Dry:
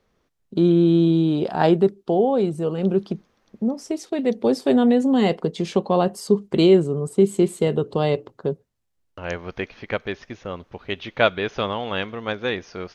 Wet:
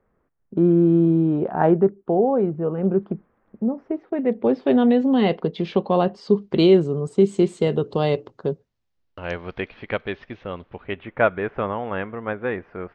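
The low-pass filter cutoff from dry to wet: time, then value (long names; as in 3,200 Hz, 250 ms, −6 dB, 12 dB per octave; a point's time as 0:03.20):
low-pass filter 24 dB per octave
0:04.07 1,800 Hz
0:04.89 3,900 Hz
0:06.05 3,900 Hz
0:07.01 6,700 Hz
0:08.46 6,700 Hz
0:09.76 3,700 Hz
0:10.64 3,700 Hz
0:11.09 2,000 Hz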